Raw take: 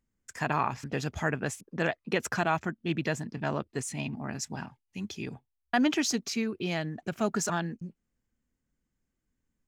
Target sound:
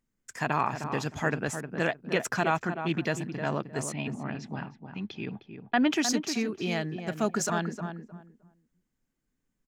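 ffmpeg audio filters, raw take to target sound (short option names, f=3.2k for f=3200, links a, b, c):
-filter_complex "[0:a]asettb=1/sr,asplit=3[a][b][c];[a]atrim=end=3.924[d];[b]atrim=start=3.92:end=5.92,asetpts=PTS-STARTPTS,afade=t=in:d=0.004:c=qsin,afade=t=out:st=1.996:d=0.004:c=qsin,lowpass=f=3.8k:w=0.5412,lowpass=f=3.8k:w=1.3066[e];[c]atrim=start=5.916[f];[d][e]acrossfade=d=0.004:c1=hsin:c2=qsin[g];[g][f]acrossfade=d=0.004:c1=qsin:c2=hsin,equalizer=f=68:w=2.5:g=-14,asplit=2[h][i];[i]adelay=309,lowpass=f=1.5k:p=1,volume=-7.5dB,asplit=2[j][k];[k]adelay=309,lowpass=f=1.5k:p=1,volume=0.21,asplit=2[l][m];[m]adelay=309,lowpass=f=1.5k:p=1,volume=0.21[n];[h][j][l][n]amix=inputs=4:normalize=0,volume=1dB"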